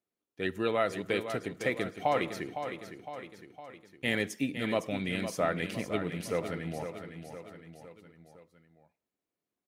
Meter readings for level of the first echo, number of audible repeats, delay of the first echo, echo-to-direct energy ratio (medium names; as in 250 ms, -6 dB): -9.0 dB, 4, 509 ms, -7.5 dB